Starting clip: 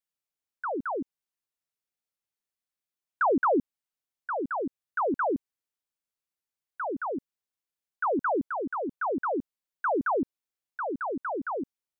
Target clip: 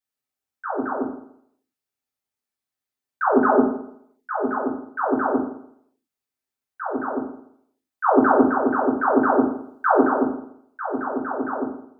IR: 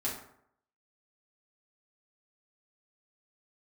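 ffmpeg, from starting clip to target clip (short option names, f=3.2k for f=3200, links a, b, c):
-filter_complex "[0:a]asettb=1/sr,asplit=3[a][b][c];[a]atrim=end=3.324[d];[b]atrim=start=3.32:end=4.58,asetpts=PTS-STARTPTS,afade=t=in:d=0.004:c=qsin,afade=t=out:st=1.256:d=0.004:c=qsin,aecho=1:1:4.8:0.54,atrim=end_sample=55566[e];[c]atrim=start=4.576[f];[d][e]acrossfade=d=0.004:c1=hsin:c2=qsin[g];[g][f]acrossfade=d=0.004:c1=qsin:c2=hsin,asplit=3[h][i][j];[h]afade=t=out:st=8.03:d=0.02[k];[i]acontrast=36,afade=t=in:st=8.03:d=0.02,afade=t=out:st=9.99:d=0.02[l];[j]afade=t=in:st=9.99:d=0.02[m];[k][l][m]amix=inputs=3:normalize=0[n];[1:a]atrim=start_sample=2205[o];[n][o]afir=irnorm=-1:irlink=0"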